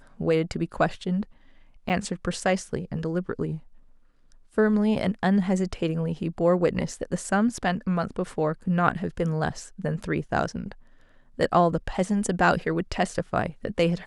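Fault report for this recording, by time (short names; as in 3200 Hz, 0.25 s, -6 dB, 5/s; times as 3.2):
1.89–1.9 gap 8.9 ms
8.89–8.9 gap 7.7 ms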